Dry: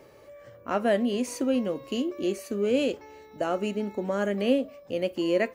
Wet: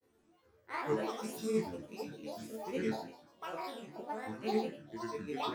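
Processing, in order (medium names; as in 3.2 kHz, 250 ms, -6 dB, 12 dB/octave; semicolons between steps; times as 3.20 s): spectral sustain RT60 1.21 s; peaking EQ 13 kHz +9 dB 0.86 oct; hum notches 50/100/150/200 Hz; granulator, spray 20 ms, pitch spread up and down by 12 st; chord resonator D2 minor, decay 0.33 s; upward expansion 1.5:1, over -47 dBFS; trim +1 dB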